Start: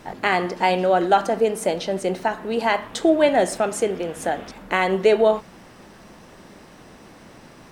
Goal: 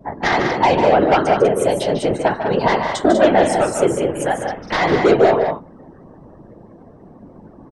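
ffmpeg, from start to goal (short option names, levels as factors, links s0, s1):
-filter_complex "[0:a]afftdn=nr=32:nf=-42,aeval=exprs='0.631*sin(PI/2*2*val(0)/0.631)':c=same,afftfilt=real='hypot(re,im)*cos(2*PI*random(0))':imag='hypot(re,im)*sin(2*PI*random(1))':win_size=512:overlap=0.75,asplit=2[s0][s1];[s1]aecho=0:1:148.7|195.3:0.398|0.447[s2];[s0][s2]amix=inputs=2:normalize=0,adynamicequalizer=threshold=0.0282:dfrequency=2600:dqfactor=0.7:tfrequency=2600:tqfactor=0.7:attack=5:release=100:ratio=0.375:range=2:mode=cutabove:tftype=highshelf,volume=1.19"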